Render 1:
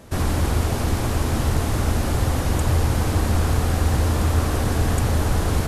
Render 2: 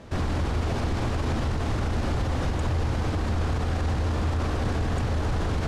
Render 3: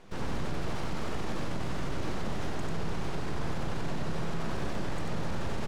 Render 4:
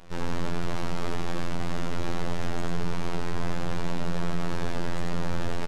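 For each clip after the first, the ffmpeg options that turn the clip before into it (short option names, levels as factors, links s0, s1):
-af "lowpass=4900,alimiter=limit=0.119:level=0:latency=1:release=42"
-af "aeval=exprs='abs(val(0))':c=same,aecho=1:1:93:0.708,volume=0.473"
-af "afftfilt=real='hypot(re,im)*cos(PI*b)':imag='0':win_size=2048:overlap=0.75,aresample=32000,aresample=44100,volume=2.11"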